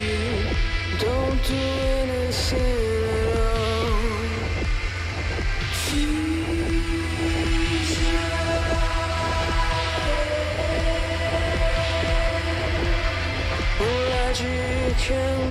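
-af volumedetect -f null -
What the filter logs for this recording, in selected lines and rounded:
mean_volume: -22.6 dB
max_volume: -10.0 dB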